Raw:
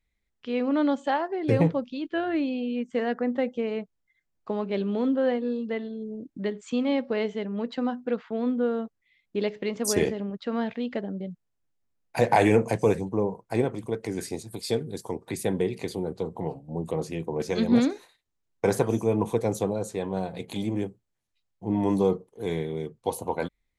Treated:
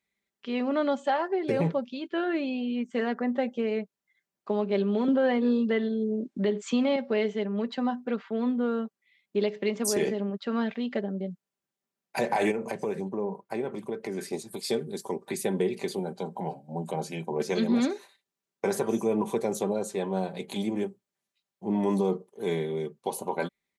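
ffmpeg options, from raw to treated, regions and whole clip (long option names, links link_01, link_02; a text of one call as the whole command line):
ffmpeg -i in.wav -filter_complex "[0:a]asettb=1/sr,asplit=3[link_01][link_02][link_03];[link_01]atrim=end=5.084[link_04];[link_02]atrim=start=5.08:end=6.96,asetpts=PTS-STARTPTS,afade=type=in:duration=0.004:curve=qsin,afade=type=out:start_time=1.876:duration=0.004:curve=qsin,highpass=140,lowpass=8000,acontrast=59[link_05];[link_03]atrim=start=6.956[link_06];[link_04][link_05]acrossfade=duration=0.004:curve1=hsin:curve2=qsin[link_07];[link_07][link_06]acrossfade=duration=0.004:curve1=qsin:curve2=hsin,asettb=1/sr,asplit=3[link_08][link_09][link_10];[link_08]atrim=end=12.514[link_11];[link_09]atrim=start=12.51:end=14.33,asetpts=PTS-STARTPTS,afade=type=in:duration=0.004:curve=qsin,afade=type=out:start_time=1.816:duration=0.004:curve=qsin,equalizer=frequency=7900:width=0.66:gain=-6.5,acompressor=threshold=-27dB:ratio=4:attack=3.2:release=140:knee=1:detection=peak[link_12];[link_10]atrim=start=14.326[link_13];[link_11][link_12]acrossfade=duration=0.004:curve1=hsin:curve2=qsin[link_14];[link_14][link_13]acrossfade=duration=0.004:curve1=qsin:curve2=hsin,asettb=1/sr,asplit=3[link_15][link_16][link_17];[link_15]atrim=end=15.994[link_18];[link_16]atrim=start=15.99:end=17.31,asetpts=PTS-STARTPTS,afade=type=in:duration=0.004:curve=qsin,afade=type=out:start_time=1.316:duration=0.004:curve=qsin,highpass=150,aecho=1:1:1.3:0.51,atrim=end_sample=58212[link_19];[link_17]atrim=start=17.306[link_20];[link_18][link_19]acrossfade=duration=0.004:curve1=hsin:curve2=qsin[link_21];[link_21][link_20]acrossfade=duration=0.004:curve1=qsin:curve2=hsin,highpass=190,aecho=1:1:5.1:0.5,alimiter=limit=-16.5dB:level=0:latency=1:release=70" out.wav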